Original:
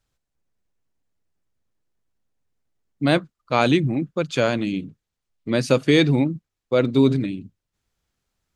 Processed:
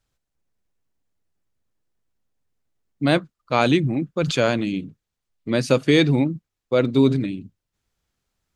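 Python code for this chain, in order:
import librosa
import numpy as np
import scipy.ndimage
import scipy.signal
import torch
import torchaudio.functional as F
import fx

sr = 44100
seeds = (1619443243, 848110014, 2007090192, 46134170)

y = fx.sustainer(x, sr, db_per_s=49.0, at=(4.15, 4.61))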